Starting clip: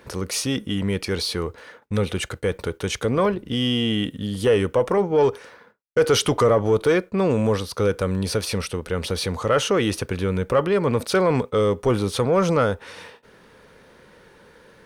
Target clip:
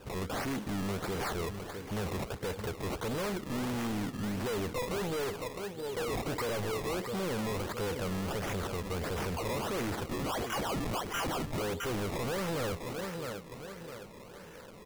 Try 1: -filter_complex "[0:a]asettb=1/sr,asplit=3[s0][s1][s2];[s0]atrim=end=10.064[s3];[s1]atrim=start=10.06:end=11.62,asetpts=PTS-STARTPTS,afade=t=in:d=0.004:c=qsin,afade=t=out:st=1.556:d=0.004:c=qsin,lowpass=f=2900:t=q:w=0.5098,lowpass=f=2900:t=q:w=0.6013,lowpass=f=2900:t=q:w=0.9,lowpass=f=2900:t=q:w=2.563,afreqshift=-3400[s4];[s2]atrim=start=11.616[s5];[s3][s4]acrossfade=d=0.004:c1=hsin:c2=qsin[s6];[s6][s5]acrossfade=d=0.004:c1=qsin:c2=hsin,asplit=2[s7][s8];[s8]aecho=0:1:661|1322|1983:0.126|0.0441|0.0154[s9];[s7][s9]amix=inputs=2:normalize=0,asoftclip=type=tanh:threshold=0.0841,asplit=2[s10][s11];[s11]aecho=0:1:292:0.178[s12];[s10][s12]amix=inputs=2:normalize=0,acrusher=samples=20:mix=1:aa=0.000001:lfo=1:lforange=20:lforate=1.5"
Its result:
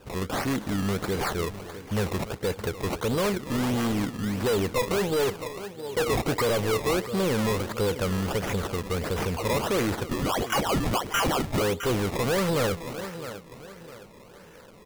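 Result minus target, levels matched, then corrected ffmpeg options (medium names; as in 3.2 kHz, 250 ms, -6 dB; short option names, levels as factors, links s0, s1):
saturation: distortion -6 dB
-filter_complex "[0:a]asettb=1/sr,asplit=3[s0][s1][s2];[s0]atrim=end=10.064[s3];[s1]atrim=start=10.06:end=11.62,asetpts=PTS-STARTPTS,afade=t=in:d=0.004:c=qsin,afade=t=out:st=1.556:d=0.004:c=qsin,lowpass=f=2900:t=q:w=0.5098,lowpass=f=2900:t=q:w=0.6013,lowpass=f=2900:t=q:w=0.9,lowpass=f=2900:t=q:w=2.563,afreqshift=-3400[s4];[s2]atrim=start=11.616[s5];[s3][s4]acrossfade=d=0.004:c1=hsin:c2=qsin[s6];[s6][s5]acrossfade=d=0.004:c1=qsin:c2=hsin,asplit=2[s7][s8];[s8]aecho=0:1:661|1322|1983:0.126|0.0441|0.0154[s9];[s7][s9]amix=inputs=2:normalize=0,asoftclip=type=tanh:threshold=0.0237,asplit=2[s10][s11];[s11]aecho=0:1:292:0.178[s12];[s10][s12]amix=inputs=2:normalize=0,acrusher=samples=20:mix=1:aa=0.000001:lfo=1:lforange=20:lforate=1.5"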